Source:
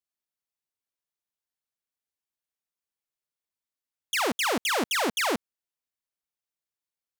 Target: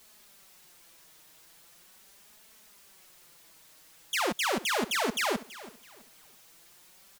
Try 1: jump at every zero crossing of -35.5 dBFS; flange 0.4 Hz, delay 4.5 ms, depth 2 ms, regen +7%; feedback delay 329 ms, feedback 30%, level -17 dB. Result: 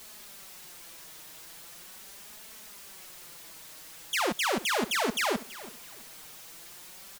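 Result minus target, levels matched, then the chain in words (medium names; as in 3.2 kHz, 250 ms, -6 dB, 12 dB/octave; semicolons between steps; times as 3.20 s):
jump at every zero crossing: distortion +9 dB
jump at every zero crossing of -45 dBFS; flange 0.4 Hz, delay 4.5 ms, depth 2 ms, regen +7%; feedback delay 329 ms, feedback 30%, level -17 dB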